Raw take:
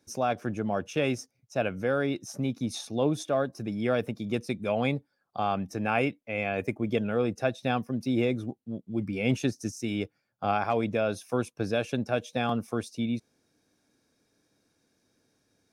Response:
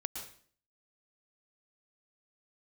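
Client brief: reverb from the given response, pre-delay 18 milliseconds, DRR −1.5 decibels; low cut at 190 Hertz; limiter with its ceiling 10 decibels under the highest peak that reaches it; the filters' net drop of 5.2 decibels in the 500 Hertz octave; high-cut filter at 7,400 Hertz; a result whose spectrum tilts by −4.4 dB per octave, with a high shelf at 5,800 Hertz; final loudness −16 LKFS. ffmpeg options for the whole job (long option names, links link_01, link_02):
-filter_complex "[0:a]highpass=190,lowpass=7400,equalizer=frequency=500:width_type=o:gain=-6.5,highshelf=frequency=5800:gain=6.5,alimiter=limit=-23.5dB:level=0:latency=1,asplit=2[link_01][link_02];[1:a]atrim=start_sample=2205,adelay=18[link_03];[link_02][link_03]afir=irnorm=-1:irlink=0,volume=1.5dB[link_04];[link_01][link_04]amix=inputs=2:normalize=0,volume=15.5dB"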